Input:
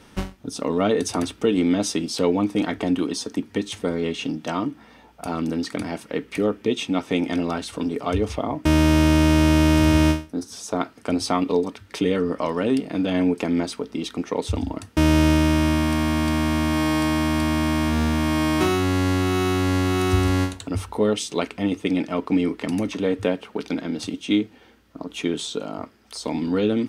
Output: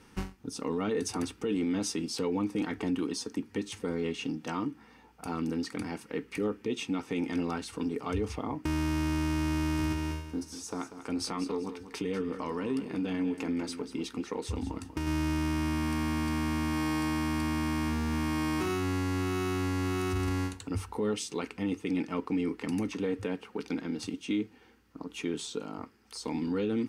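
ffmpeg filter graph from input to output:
-filter_complex "[0:a]asettb=1/sr,asplit=3[a][b][c];[a]atrim=end=9.924[d];[b]atrim=start=9.92:end=15.07,asetpts=PTS-STARTPTS,afade=t=in:d=0.004:c=qsin,afade=t=out:st=5.146:d=0.004:c=qsin,acompressor=threshold=-22dB:ratio=3:attack=3.2:release=140:knee=1:detection=peak,asplit=2[e][f];[f]adelay=15,volume=-13dB[g];[e][g]amix=inputs=2:normalize=0,atrim=end_sample=227115,aecho=1:1:191|382|573:0.266|0.0772|0.0224,atrim=end_sample=227115[h];[c]atrim=start=15.066[i];[d][h]acrossfade=d=0.004:c1=hsin:c2=qsin[j];[j][i]acrossfade=d=0.004:c1=qsin:c2=hsin,superequalizer=8b=0.355:13b=0.631,alimiter=limit=-15.5dB:level=0:latency=1:release=12,volume=-7dB"

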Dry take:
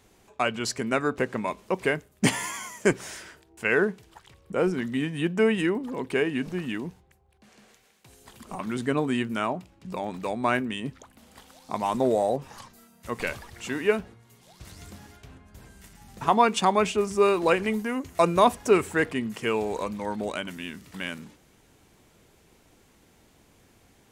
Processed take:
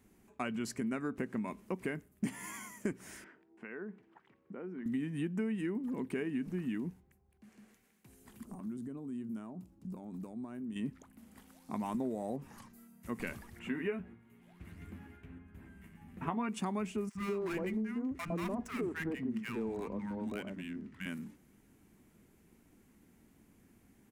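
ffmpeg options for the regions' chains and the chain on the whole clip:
-filter_complex "[0:a]asettb=1/sr,asplit=3[a][b][c];[a]atrim=end=3.244[d];[b]atrim=start=3.24:end=4.86,asetpts=PTS-STARTPTS,afade=t=in:d=0.004:c=qsin,afade=t=out:st=1.616:d=0.004:c=qsin,acompressor=threshold=-36dB:ratio=3:attack=3.2:release=140:knee=1:detection=peak,highpass=250,lowpass=2.2k[e];[c]atrim=start=4.856[f];[d][e]acrossfade=d=0.004:c1=hsin:c2=qsin[g];[g][f]acrossfade=d=0.004:c1=qsin:c2=hsin,asettb=1/sr,asplit=3[h][i][j];[h]atrim=end=8.454[k];[i]atrim=start=8.45:end=10.76,asetpts=PTS-STARTPTS,afade=t=in:d=0.004:c=qsin,afade=t=out:st=2.306:d=0.004:c=qsin,equalizer=f=2.1k:t=o:w=1.4:g=-13,acompressor=threshold=-37dB:ratio=5:attack=3.2:release=140:knee=1:detection=peak[l];[j]atrim=start=10.756[m];[k][l]acrossfade=d=0.004:c1=hsin:c2=qsin[n];[n][m]acrossfade=d=0.004:c1=qsin:c2=hsin,asettb=1/sr,asplit=3[o][p][q];[o]atrim=end=13.594[r];[p]atrim=start=13.59:end=16.49,asetpts=PTS-STARTPTS,afade=t=in:d=0.004:c=qsin,afade=t=out:st=2.896:d=0.004:c=qsin,highshelf=f=3.7k:t=q:w=1.5:g=-11,asplit=2[s][t];[t]adelay=12,volume=-6dB[u];[s][u]amix=inputs=2:normalize=0,atrim=end_sample=127890[v];[q]atrim=start=16.486[w];[r][v]acrossfade=d=0.004:c1=hsin:c2=qsin[x];[x][w]acrossfade=d=0.004:c1=qsin:c2=hsin,asettb=1/sr,asplit=3[y][z][aa];[y]atrim=end=17.094[ab];[z]atrim=start=17.09:end=21.06,asetpts=PTS-STARTPTS,afade=t=in:d=0.004:c=qsin,afade=t=out:st=3.966:d=0.004:c=qsin,adynamicsmooth=sensitivity=7.5:basefreq=2.9k,asoftclip=type=hard:threshold=-19.5dB,acrossover=split=230|920[ac][ad][ae];[ac]adelay=60[af];[ad]adelay=110[ag];[af][ag][ae]amix=inputs=3:normalize=0,atrim=end_sample=175077[ah];[aa]atrim=start=21.056[ai];[ab][ah]acrossfade=d=0.004:c1=hsin:c2=qsin[aj];[aj][ai]acrossfade=d=0.004:c1=qsin:c2=hsin,firequalizer=gain_entry='entry(130,0);entry(210,8);entry(510,-6);entry(2000,-2);entry(3600,-10);entry(11000,1)':delay=0.05:min_phase=1,acompressor=threshold=-26dB:ratio=6,volume=-6.5dB"

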